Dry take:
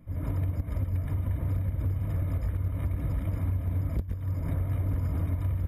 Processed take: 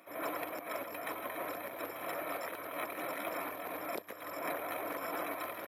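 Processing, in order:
pitch shifter +1 semitone
Bessel high-pass filter 680 Hz, order 4
level +11.5 dB

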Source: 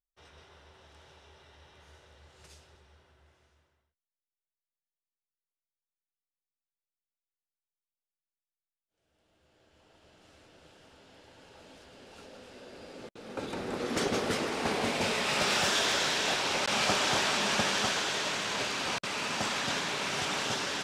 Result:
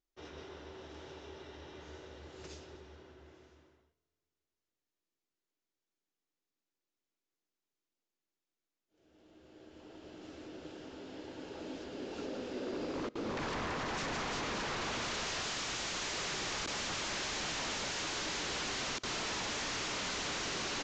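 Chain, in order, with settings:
parametric band 320 Hz +13.5 dB 1 octave
brickwall limiter −24 dBFS, peak gain reduction 12 dB
wave folding −36 dBFS
on a send at −22.5 dB: convolution reverb RT60 2.4 s, pre-delay 4 ms
on the sum: downsampling to 16,000 Hz
level +3.5 dB

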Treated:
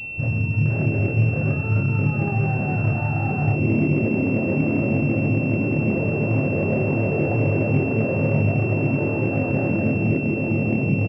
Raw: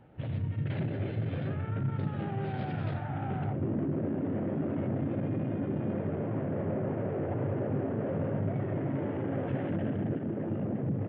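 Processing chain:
low-shelf EQ 72 Hz +9 dB
double-tracking delay 27 ms −3 dB
switching amplifier with a slow clock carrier 2,700 Hz
level +8 dB

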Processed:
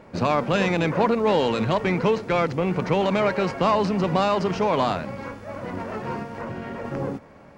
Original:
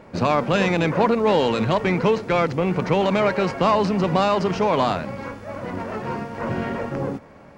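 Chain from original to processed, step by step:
0:06.22–0:06.85: downward compressor, threshold −27 dBFS, peak gain reduction 6.5 dB
level −2 dB

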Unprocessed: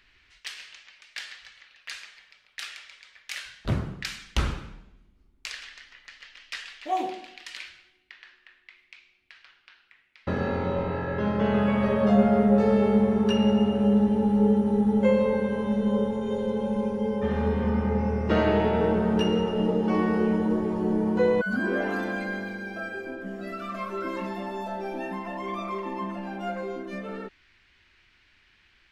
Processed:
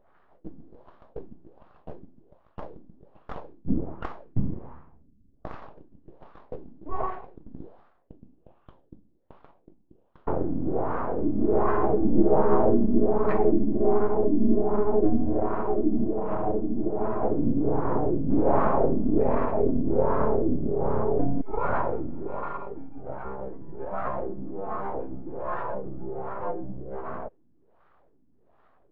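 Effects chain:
full-wave rectification
auto-filter low-pass sine 1.3 Hz 310–1,600 Hz
formants moved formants −5 semitones
level +2.5 dB

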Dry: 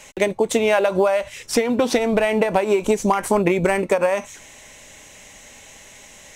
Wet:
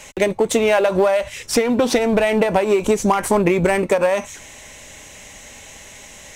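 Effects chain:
parametric band 63 Hz +4 dB 1.6 octaves
in parallel at −5 dB: gain into a clipping stage and back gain 23.5 dB

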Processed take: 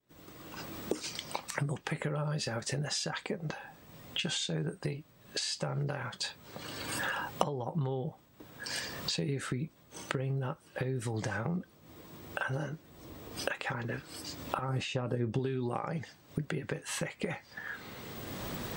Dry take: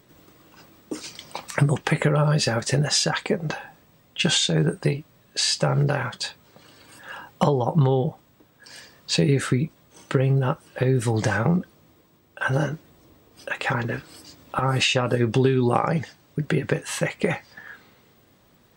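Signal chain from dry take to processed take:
camcorder AGC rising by 25 dB per second
0:14.69–0:15.39: tilt shelving filter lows +5 dB, about 850 Hz
downward compressor 1.5 to 1, threshold −39 dBFS, peak gain reduction 12 dB
downward expander −47 dBFS
level −6 dB

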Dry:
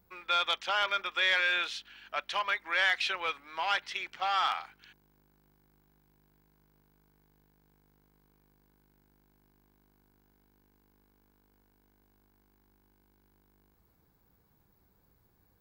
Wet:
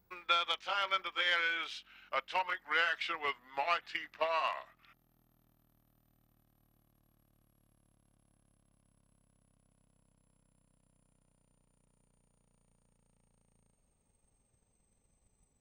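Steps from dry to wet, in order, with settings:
pitch glide at a constant tempo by −11.5 semitones starting unshifted
transient designer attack +6 dB, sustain −1 dB
level −4.5 dB

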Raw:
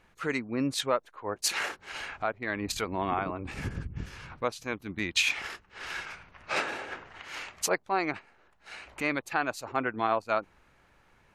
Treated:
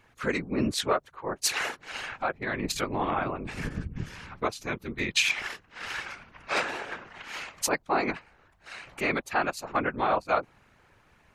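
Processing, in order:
tape wow and flutter 21 cents
random phases in short frames
level +2 dB

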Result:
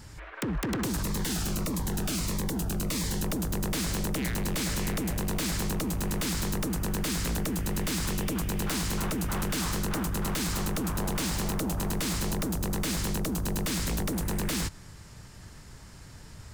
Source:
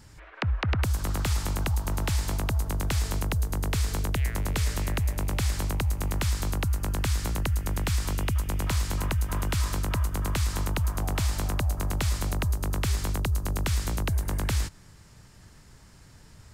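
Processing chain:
wave folding −29 dBFS
0:01.03–0:03.23: phaser whose notches keep moving one way falling 1.6 Hz
level +4.5 dB

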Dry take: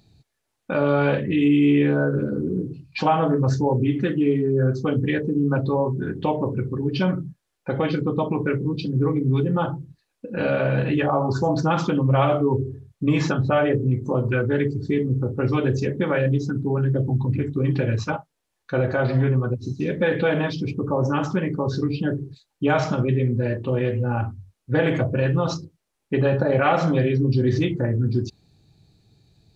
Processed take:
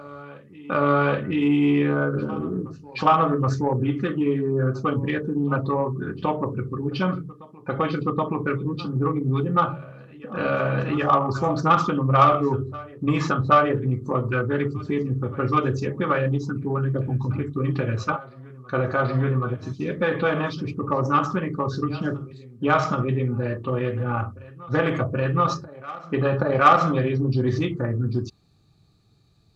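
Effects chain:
hollow resonant body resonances 1,200 Hz, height 16 dB, ringing for 25 ms
harmonic generator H 3 −25 dB, 7 −34 dB, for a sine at −1.5 dBFS
backwards echo 775 ms −20.5 dB

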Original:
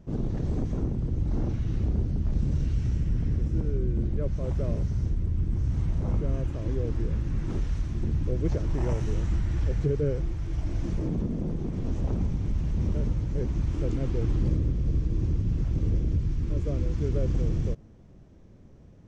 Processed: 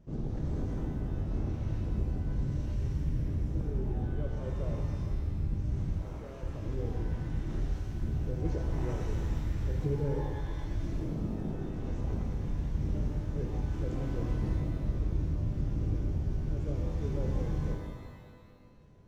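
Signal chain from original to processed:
0:06.01–0:06.43: high-pass filter 480 Hz 12 dB per octave
reverb with rising layers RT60 1.6 s, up +12 semitones, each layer −8 dB, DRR 1.5 dB
level −8 dB

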